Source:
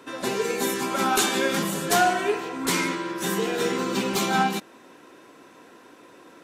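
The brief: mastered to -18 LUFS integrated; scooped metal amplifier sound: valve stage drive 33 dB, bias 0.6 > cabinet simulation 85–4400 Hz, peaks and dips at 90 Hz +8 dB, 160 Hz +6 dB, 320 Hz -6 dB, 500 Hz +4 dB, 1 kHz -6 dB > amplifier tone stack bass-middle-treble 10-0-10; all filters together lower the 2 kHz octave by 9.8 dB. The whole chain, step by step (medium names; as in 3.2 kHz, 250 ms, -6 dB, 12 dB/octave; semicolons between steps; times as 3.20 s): peaking EQ 2 kHz -6 dB; valve stage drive 33 dB, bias 0.6; cabinet simulation 85–4400 Hz, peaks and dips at 90 Hz +8 dB, 160 Hz +6 dB, 320 Hz -6 dB, 500 Hz +4 dB, 1 kHz -6 dB; amplifier tone stack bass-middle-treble 10-0-10; trim +27 dB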